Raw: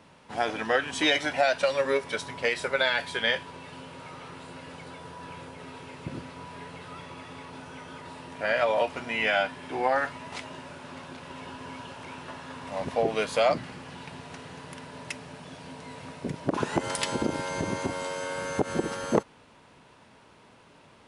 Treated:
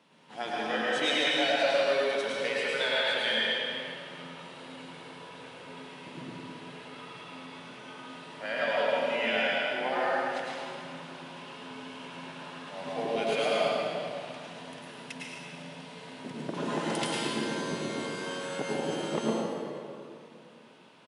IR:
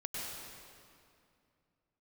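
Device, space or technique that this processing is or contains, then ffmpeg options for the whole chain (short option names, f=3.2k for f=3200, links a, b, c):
PA in a hall: -filter_complex "[0:a]highpass=f=150:w=0.5412,highpass=f=150:w=1.3066,equalizer=f=3.3k:t=o:w=0.77:g=6,aecho=1:1:108:0.501[a];[1:a]atrim=start_sample=2205[b];[a][b]afir=irnorm=-1:irlink=0,volume=-5.5dB"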